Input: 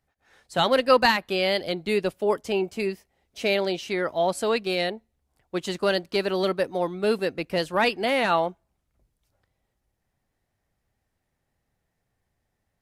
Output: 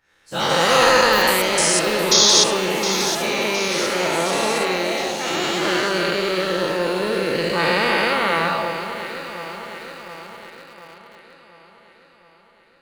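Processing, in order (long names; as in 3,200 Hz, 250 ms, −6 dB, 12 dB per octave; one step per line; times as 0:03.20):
every bin's largest magnitude spread in time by 480 ms
parametric band 710 Hz −7.5 dB 0.35 octaves
sound drawn into the spectrogram noise, 0:02.11–0:02.44, 3,200–6,800 Hz −10 dBFS
delay with pitch and tempo change per echo 166 ms, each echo +7 semitones, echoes 3, each echo −6 dB
on a send: delay that swaps between a low-pass and a high-pass 357 ms, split 1,400 Hz, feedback 76%, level −8 dB
on the sum: convolution reverb RT60 0.75 s, pre-delay 6 ms, DRR 10.5 dB
in parallel at −11 dB: bit reduction 5 bits
on the sum: level −6.5 dB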